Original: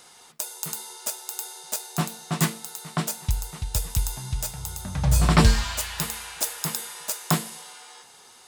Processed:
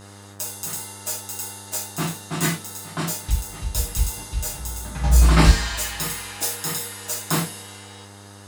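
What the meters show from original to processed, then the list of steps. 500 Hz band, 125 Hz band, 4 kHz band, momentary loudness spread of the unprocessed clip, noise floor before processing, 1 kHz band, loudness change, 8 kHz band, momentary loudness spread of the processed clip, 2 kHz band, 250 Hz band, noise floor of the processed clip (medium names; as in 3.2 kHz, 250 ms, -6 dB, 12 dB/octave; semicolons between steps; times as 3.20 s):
+2.0 dB, +2.5 dB, +2.0 dB, 13 LU, -51 dBFS, +1.5 dB, +3.0 dB, +2.5 dB, 14 LU, +3.5 dB, +1.5 dB, -43 dBFS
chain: gated-style reverb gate 130 ms falling, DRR -7.5 dB; mains buzz 100 Hz, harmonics 19, -39 dBFS -5 dB/octave; trim -5.5 dB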